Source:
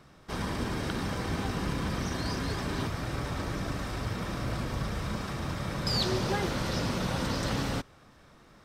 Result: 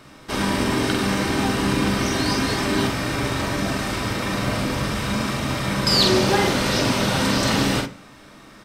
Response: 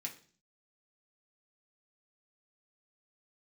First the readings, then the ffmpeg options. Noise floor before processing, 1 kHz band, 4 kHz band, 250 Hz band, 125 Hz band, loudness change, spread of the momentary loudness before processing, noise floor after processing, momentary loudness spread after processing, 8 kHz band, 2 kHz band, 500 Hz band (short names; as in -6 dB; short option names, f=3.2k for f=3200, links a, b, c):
-57 dBFS, +11.0 dB, +13.0 dB, +11.5 dB, +7.0 dB, +11.0 dB, 5 LU, -46 dBFS, 7 LU, +13.5 dB, +12.5 dB, +11.5 dB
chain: -filter_complex "[0:a]asplit=2[a][b];[b]adelay=46,volume=-4.5dB[c];[a][c]amix=inputs=2:normalize=0,asplit=2[d][e];[1:a]atrim=start_sample=2205,asetrate=48510,aresample=44100[f];[e][f]afir=irnorm=-1:irlink=0,volume=1.5dB[g];[d][g]amix=inputs=2:normalize=0,volume=7.5dB"